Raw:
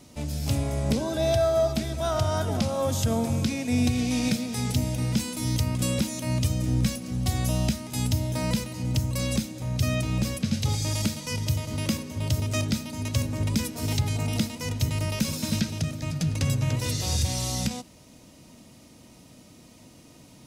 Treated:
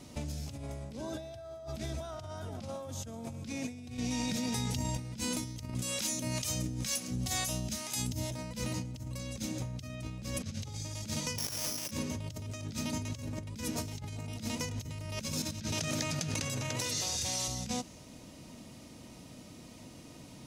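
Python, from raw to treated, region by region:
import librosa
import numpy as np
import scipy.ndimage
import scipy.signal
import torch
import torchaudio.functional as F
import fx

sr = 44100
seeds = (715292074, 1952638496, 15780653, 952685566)

y = fx.chain(x, sr, fx.comb_fb(f0_hz=940.0, decay_s=0.2, harmonics='all', damping=0.0, mix_pct=80),
    fx.env_flatten(amount_pct=100), at=(3.97, 4.99))
y = fx.chain(y, sr, fx.harmonic_tremolo(hz=2.1, depth_pct=70, crossover_hz=520.0),
    fx.tilt_eq(slope=2.0), at=(5.74, 8.31))
y = fx.chain(y, sr, fx.highpass(hz=220.0, slope=12),
    fx.resample_bad(factor=8, down='none', up='zero_stuff'), at=(11.38, 11.91))
y = fx.chain(y, sr, fx.highpass(hz=500.0, slope=6),
    fx.env_flatten(amount_pct=70), at=(15.72, 17.48))
y = fx.high_shelf(y, sr, hz=11000.0, db=-6.5)
y = fx.over_compress(y, sr, threshold_db=-34.0, ratio=-1.0)
y = fx.dynamic_eq(y, sr, hz=6400.0, q=3.2, threshold_db=-55.0, ratio=4.0, max_db=5)
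y = F.gain(torch.from_numpy(y), -4.5).numpy()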